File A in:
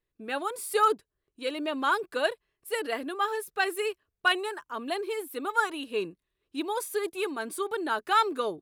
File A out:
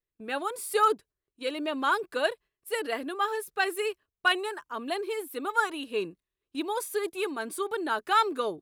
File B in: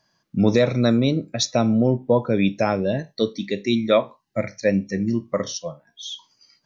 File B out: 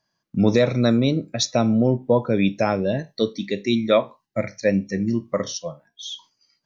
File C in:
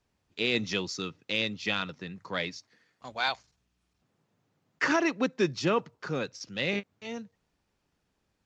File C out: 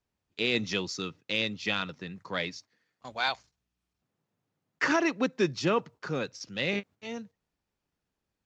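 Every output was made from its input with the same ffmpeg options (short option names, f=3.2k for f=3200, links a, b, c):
-af "agate=range=-8dB:threshold=-49dB:ratio=16:detection=peak"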